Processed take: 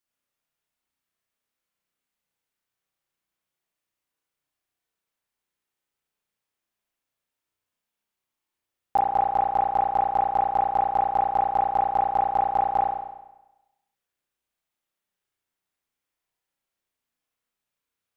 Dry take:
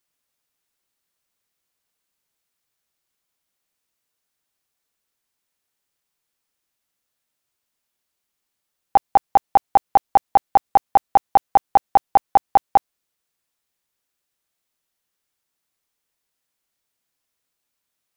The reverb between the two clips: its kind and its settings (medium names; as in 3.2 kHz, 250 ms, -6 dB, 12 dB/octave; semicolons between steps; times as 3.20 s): spring tank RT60 1 s, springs 33 ms, chirp 70 ms, DRR -3.5 dB; trim -9 dB